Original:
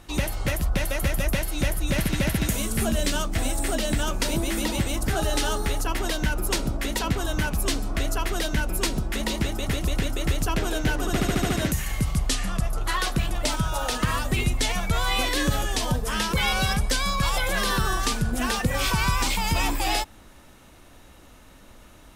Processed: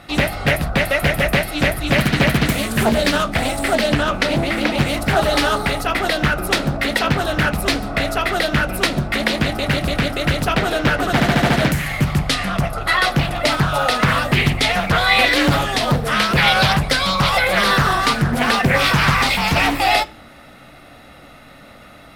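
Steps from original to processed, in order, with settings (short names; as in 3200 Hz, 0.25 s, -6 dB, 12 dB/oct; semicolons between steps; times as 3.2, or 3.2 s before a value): 3.87–4.77 high shelf 9300 Hz -> 5400 Hz -11 dB; reverb RT60 0.40 s, pre-delay 3 ms, DRR 13 dB; Doppler distortion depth 0.72 ms; gain +3.5 dB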